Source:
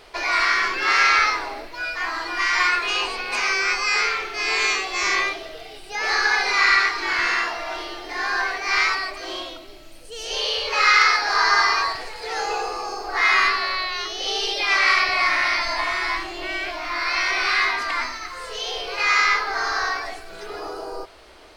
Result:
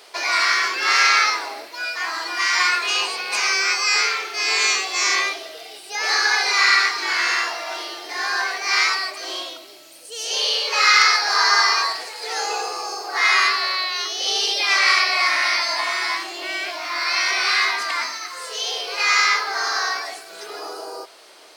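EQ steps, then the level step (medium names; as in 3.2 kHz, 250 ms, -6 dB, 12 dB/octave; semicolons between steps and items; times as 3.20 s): high-pass 120 Hz 24 dB/octave; tone controls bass -14 dB, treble +9 dB; 0.0 dB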